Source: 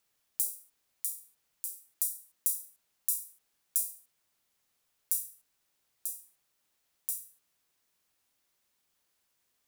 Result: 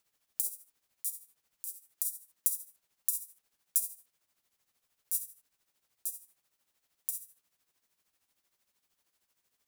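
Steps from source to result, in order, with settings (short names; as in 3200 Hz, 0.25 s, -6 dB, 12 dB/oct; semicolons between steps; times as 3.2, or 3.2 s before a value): tremolo 13 Hz, depth 66%; gain +2 dB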